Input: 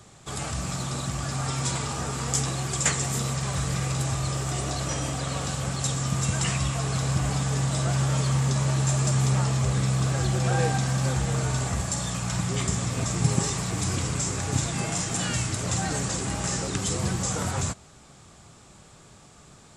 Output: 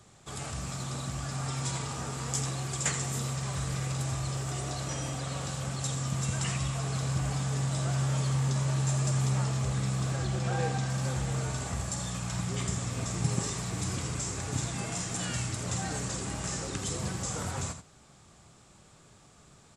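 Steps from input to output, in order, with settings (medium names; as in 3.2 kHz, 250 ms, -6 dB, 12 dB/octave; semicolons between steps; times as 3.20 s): 10.16–10.90 s: Bessel low-pass 7.8 kHz, order 2; delay 82 ms -10 dB; trim -6.5 dB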